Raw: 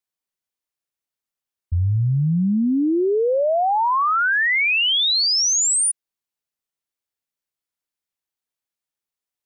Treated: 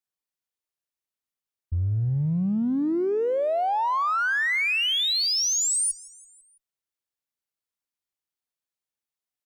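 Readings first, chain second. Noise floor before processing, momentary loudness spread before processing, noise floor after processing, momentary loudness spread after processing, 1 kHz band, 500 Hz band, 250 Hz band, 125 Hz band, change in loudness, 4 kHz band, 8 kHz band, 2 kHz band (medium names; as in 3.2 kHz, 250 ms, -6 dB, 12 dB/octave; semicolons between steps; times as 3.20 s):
under -85 dBFS, 5 LU, under -85 dBFS, 5 LU, -5.5 dB, -5.5 dB, -5.5 dB, -5.5 dB, -5.5 dB, -5.5 dB, -5.5 dB, -5.5 dB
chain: in parallel at -9.5 dB: one-sided clip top -38.5 dBFS, bottom -20.5 dBFS; on the sum: feedback delay 166 ms, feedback 59%, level -22 dB; trim -6.5 dB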